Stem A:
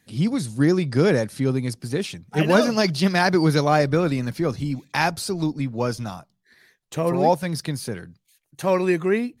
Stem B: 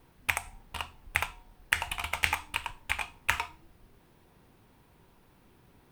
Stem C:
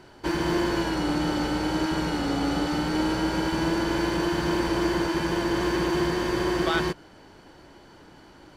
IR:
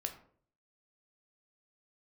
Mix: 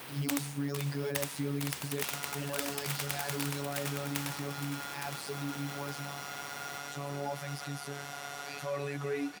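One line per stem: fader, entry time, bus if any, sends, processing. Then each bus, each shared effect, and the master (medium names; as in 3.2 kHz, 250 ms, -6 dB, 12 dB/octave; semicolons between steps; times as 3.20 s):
-3.5 dB, 0.00 s, bus A, no send, no echo send, none
-2.0 dB, 0.00 s, no bus, no send, echo send -5 dB, spectrum-flattening compressor 4:1; auto duck -7 dB, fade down 0.75 s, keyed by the first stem
+2.5 dB, 1.80 s, bus A, no send, echo send -13 dB, pre-emphasis filter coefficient 0.8; ring modulator 1.1 kHz
bus A: 0.0 dB, robot voice 142 Hz; peak limiter -23.5 dBFS, peak gain reduction 17.5 dB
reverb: none
echo: feedback delay 864 ms, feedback 41%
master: high-pass 110 Hz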